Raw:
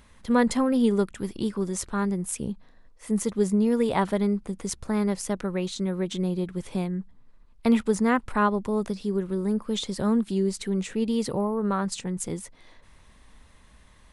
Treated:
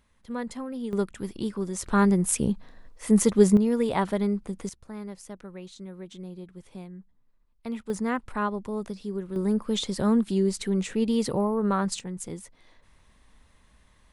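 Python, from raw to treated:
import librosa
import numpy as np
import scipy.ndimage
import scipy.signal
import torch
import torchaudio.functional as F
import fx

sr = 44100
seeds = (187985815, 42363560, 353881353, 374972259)

y = fx.gain(x, sr, db=fx.steps((0.0, -12.0), (0.93, -2.5), (1.86, 6.0), (3.57, -1.5), (4.69, -13.0), (7.9, -5.5), (9.36, 1.0), (11.99, -5.0)))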